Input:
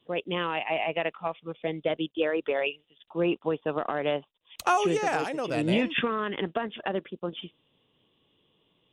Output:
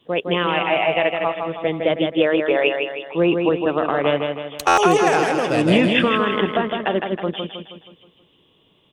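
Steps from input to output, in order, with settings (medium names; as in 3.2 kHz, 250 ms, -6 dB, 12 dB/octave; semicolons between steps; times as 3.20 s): feedback delay 159 ms, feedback 48%, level -5 dB; buffer glitch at 4.67 s, samples 512, times 8; trim +8.5 dB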